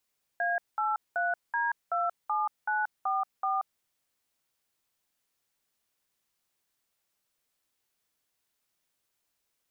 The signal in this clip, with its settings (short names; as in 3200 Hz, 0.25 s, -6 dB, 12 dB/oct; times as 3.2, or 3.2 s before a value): DTMF "A83D27944", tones 0.181 s, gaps 0.198 s, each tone -28.5 dBFS